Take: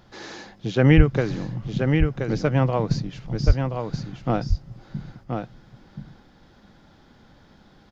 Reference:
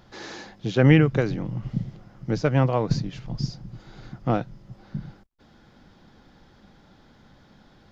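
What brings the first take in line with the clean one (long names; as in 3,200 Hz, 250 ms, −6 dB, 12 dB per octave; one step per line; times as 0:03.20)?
high-pass at the plosives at 0:00.96/0:03.46
echo removal 1,027 ms −5.5 dB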